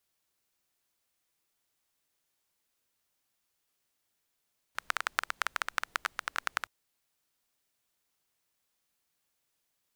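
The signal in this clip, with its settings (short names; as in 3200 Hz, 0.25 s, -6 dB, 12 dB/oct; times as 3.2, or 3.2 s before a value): rain from filtered ticks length 1.92 s, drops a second 13, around 1400 Hz, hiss -29 dB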